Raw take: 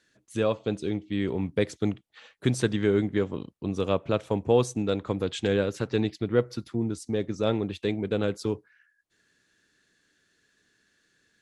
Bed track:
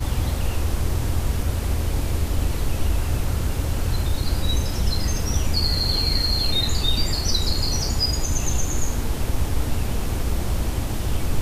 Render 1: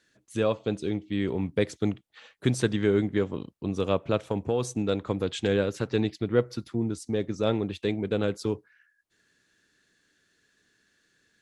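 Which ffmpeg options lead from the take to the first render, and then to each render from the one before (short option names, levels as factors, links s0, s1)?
-filter_complex "[0:a]asettb=1/sr,asplit=3[s0][s1][s2];[s0]atrim=end=4.234[s3];[s1]atrim=start=4.23:end=4.78,asetpts=PTS-STARTPTS,afade=t=in:d=0.004:c=qsin,afade=t=out:st=0.546:d=0.004:c=qsin,acompressor=threshold=0.0891:ratio=4:attack=3.2:release=140:knee=1:detection=peak[s4];[s2]atrim=start=4.776[s5];[s3][s4]acrossfade=d=0.004:c1=hsin:c2=qsin[s6];[s6][s5]acrossfade=d=0.004:c1=qsin:c2=hsin"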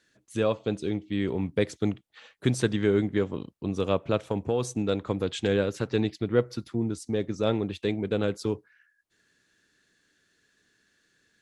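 -af anull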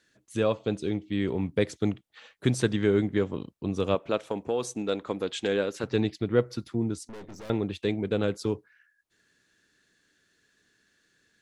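-filter_complex "[0:a]asettb=1/sr,asplit=3[s0][s1][s2];[s0]atrim=end=3.954[s3];[s1]atrim=start=3.95:end=5.84,asetpts=PTS-STARTPTS,afade=t=in:d=0.004:c=qsin,afade=t=out:st=1.886:d=0.004:c=qsin,equalizer=f=97:t=o:w=1.6:g=-14[s4];[s2]atrim=start=5.836[s5];[s3][s4]acrossfade=d=0.004:c1=hsin:c2=qsin[s6];[s6][s5]acrossfade=d=0.004:c1=qsin:c2=hsin,asettb=1/sr,asplit=3[s7][s8][s9];[s7]atrim=end=7.074[s10];[s8]atrim=start=7.07:end=7.5,asetpts=PTS-STARTPTS,afade=t=in:d=0.004:c=qsin,afade=t=out:st=0.426:d=0.004:c=qsin,aeval=exprs='(tanh(112*val(0)+0.6)-tanh(0.6))/112':c=same[s11];[s9]atrim=start=7.496[s12];[s10][s11]acrossfade=d=0.004:c1=hsin:c2=qsin[s13];[s13][s12]acrossfade=d=0.004:c1=qsin:c2=hsin"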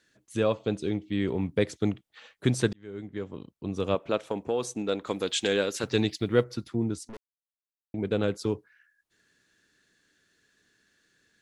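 -filter_complex "[0:a]asettb=1/sr,asplit=3[s0][s1][s2];[s0]atrim=end=5.044[s3];[s1]atrim=start=5.04:end=6.44,asetpts=PTS-STARTPTS,afade=t=in:d=0.004:c=qsin,afade=t=out:st=1.396:d=0.004:c=qsin,highshelf=f=2900:g=11[s4];[s2]atrim=start=6.436[s5];[s3][s4]acrossfade=d=0.004:c1=hsin:c2=qsin[s6];[s6][s5]acrossfade=d=0.004:c1=qsin:c2=hsin,asplit=4[s7][s8][s9][s10];[s7]atrim=end=2.73,asetpts=PTS-STARTPTS,afade=t=out:st=2.726:d=0.004:c=hsin[s11];[s8]atrim=start=2.73:end=7.17,asetpts=PTS-STARTPTS,afade=t=in:d=1.35,afade=t=out:st=4.436:d=0.004:c=hsin[s12];[s9]atrim=start=7.17:end=7.94,asetpts=PTS-STARTPTS,volume=0[s13];[s10]atrim=start=7.94,asetpts=PTS-STARTPTS,afade=t=in:d=0.004:c=hsin[s14];[s11][s12][s13][s14]concat=n=4:v=0:a=1"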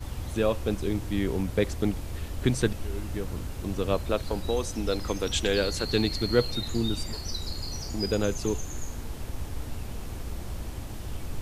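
-filter_complex "[1:a]volume=0.251[s0];[0:a][s0]amix=inputs=2:normalize=0"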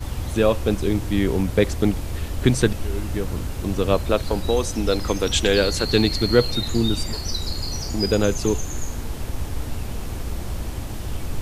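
-af "volume=2.24,alimiter=limit=0.708:level=0:latency=1"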